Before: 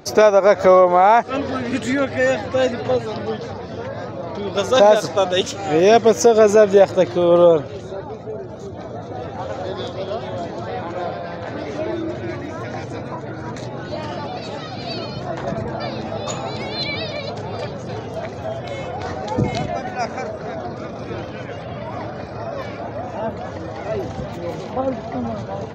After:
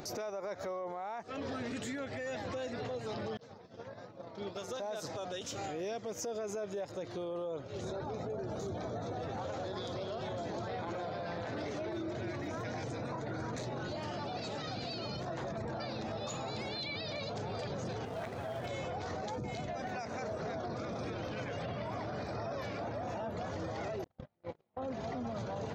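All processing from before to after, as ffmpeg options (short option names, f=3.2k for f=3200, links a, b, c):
-filter_complex "[0:a]asettb=1/sr,asplit=3[a][b][c];[a]atrim=end=3.374[d];[b]atrim=start=3.37:end=4.82,asetpts=PTS-STARTPTS,afade=t=in:d=0.004:c=qsin,afade=t=out:st=1.446:d=0.004:c=qsin,agate=range=-33dB:threshold=-18dB:ratio=3:release=100:detection=peak,acompressor=threshold=-32dB:ratio=4:attack=3.2:release=140:knee=1:detection=peak,equalizer=f=67:w=2.7:g=-15[e];[c]atrim=start=4.816[f];[d][e]acrossfade=d=0.004:c1=hsin:c2=qsin[g];[g][f]acrossfade=d=0.004:c1=qsin:c2=hsin,asettb=1/sr,asplit=3[h][i][j];[h]atrim=end=18.054[k];[i]atrim=start=18.05:end=18.66,asetpts=PTS-STARTPTS,afade=t=in:d=0.004:c=qsin,afade=t=out:st=0.606:d=0.004:c=qsin,tiltshelf=f=1.3k:g=-6.5,adynamicsmooth=sensitivity=1.5:basefreq=1.5k,aeval=exprs='sgn(val(0))*max(abs(val(0))-0.00299,0)':c=same[l];[j]atrim=start=18.656[m];[k][l]acrossfade=d=0.004:c1=hsin:c2=qsin[n];[n][m]acrossfade=d=0.004:c1=qsin:c2=hsin,asettb=1/sr,asplit=3[o][p][q];[o]atrim=end=24.044[r];[p]atrim=start=24.04:end=24.82,asetpts=PTS-STARTPTS,afade=t=in:d=0.004:c=qsin,afade=t=out:st=0.776:d=0.004:c=qsin,lowpass=3.4k,bandreject=f=60.49:t=h:w=4,bandreject=f=120.98:t=h:w=4,bandreject=f=181.47:t=h:w=4,bandreject=f=241.96:t=h:w=4,bandreject=f=302.45:t=h:w=4,agate=range=-50dB:threshold=-24dB:ratio=16:release=100:detection=peak[s];[q]atrim=start=24.816[t];[r][s]acrossfade=d=0.004:c1=hsin:c2=qsin[u];[u][t]acrossfade=d=0.004:c1=qsin:c2=hsin,highshelf=f=5.4k:g=6.5,acompressor=threshold=-30dB:ratio=8,alimiter=level_in=5dB:limit=-24dB:level=0:latency=1:release=14,volume=-5dB,volume=-2.5dB"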